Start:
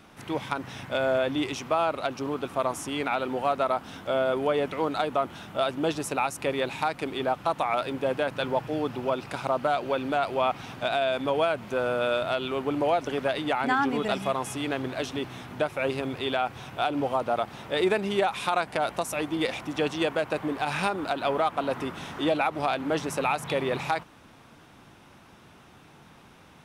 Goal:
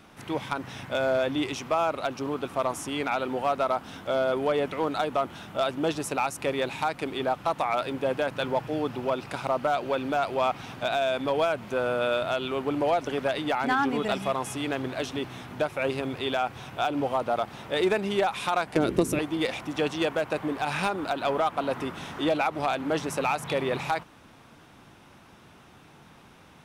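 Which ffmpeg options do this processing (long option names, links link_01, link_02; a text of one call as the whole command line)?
ffmpeg -i in.wav -filter_complex "[0:a]asoftclip=type=hard:threshold=-17dB,asettb=1/sr,asplit=3[link_01][link_02][link_03];[link_01]atrim=end=18.764[link_04];[link_02]atrim=start=18.76:end=19.19,asetpts=PTS-STARTPTS,afade=type=in:duration=0.004:curve=qsin,afade=type=out:start_time=0.426:duration=0.004:curve=qsin,lowshelf=frequency=520:width_type=q:width=3:gain=11[link_05];[link_03]atrim=start=19.186[link_06];[link_04][link_05]acrossfade=duration=0.004:curve1=hsin:curve2=qsin[link_07];[link_07][link_06]acrossfade=duration=0.004:curve1=qsin:curve2=hsin" out.wav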